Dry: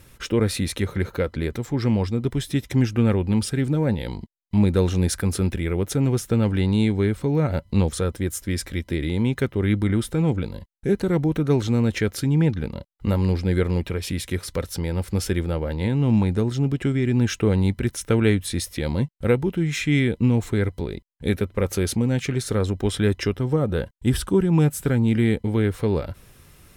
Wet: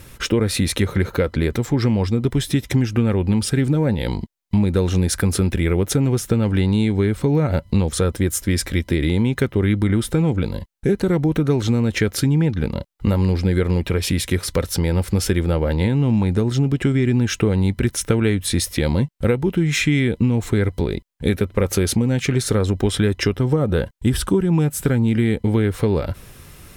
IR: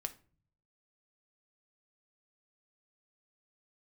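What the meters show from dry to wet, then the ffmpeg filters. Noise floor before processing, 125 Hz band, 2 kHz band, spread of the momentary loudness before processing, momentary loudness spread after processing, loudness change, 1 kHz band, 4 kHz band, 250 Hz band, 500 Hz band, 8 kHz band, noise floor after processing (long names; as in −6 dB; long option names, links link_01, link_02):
−54 dBFS, +3.0 dB, +4.0 dB, 8 LU, 4 LU, +3.0 dB, +3.0 dB, +5.5 dB, +3.0 dB, +3.0 dB, +6.0 dB, −47 dBFS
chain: -af "acompressor=threshold=-22dB:ratio=6,volume=8dB"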